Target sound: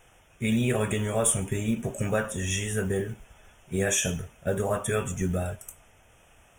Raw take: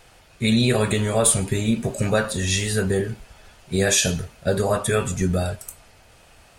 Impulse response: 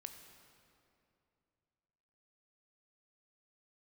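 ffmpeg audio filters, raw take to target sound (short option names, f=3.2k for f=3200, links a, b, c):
-af "acrusher=bits=7:mode=log:mix=0:aa=0.000001,asuperstop=centerf=4400:order=8:qfactor=2.2,volume=-6dB"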